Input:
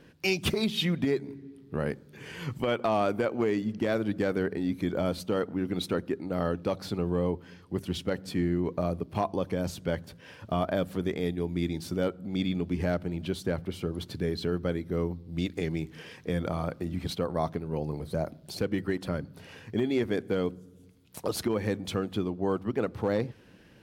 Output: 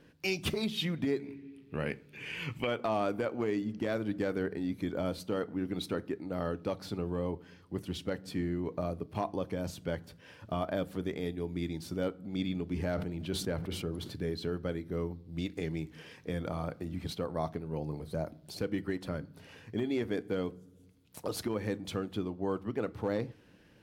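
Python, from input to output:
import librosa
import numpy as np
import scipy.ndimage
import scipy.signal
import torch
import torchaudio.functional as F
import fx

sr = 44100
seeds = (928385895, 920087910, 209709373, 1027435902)

y = fx.peak_eq(x, sr, hz=2500.0, db=14.5, octaves=0.61, at=(1.19, 2.67))
y = fx.rev_fdn(y, sr, rt60_s=0.37, lf_ratio=1.0, hf_ratio=0.75, size_ms=20.0, drr_db=15.5)
y = fx.sustainer(y, sr, db_per_s=52.0, at=(12.73, 14.14))
y = F.gain(torch.from_numpy(y), -5.0).numpy()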